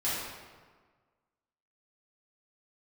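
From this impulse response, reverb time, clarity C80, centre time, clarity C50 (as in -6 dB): 1.5 s, 1.0 dB, 97 ms, -1.5 dB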